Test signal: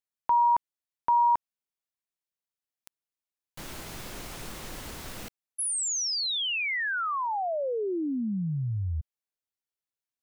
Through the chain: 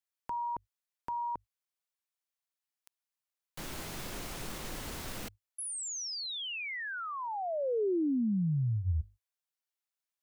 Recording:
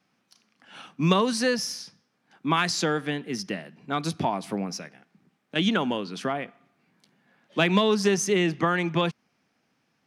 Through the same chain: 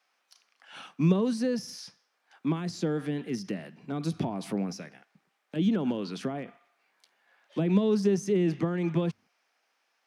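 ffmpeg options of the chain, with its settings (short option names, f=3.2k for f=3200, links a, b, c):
-filter_complex "[0:a]bandreject=f=50:t=h:w=6,bandreject=f=100:t=h:w=6,acrossover=split=490[a][b];[a]agate=range=-33dB:threshold=-54dB:ratio=3:release=97:detection=rms[c];[b]acompressor=threshold=-36dB:ratio=16:attack=0.16:release=94:knee=1:detection=peak[d];[c][d]amix=inputs=2:normalize=0"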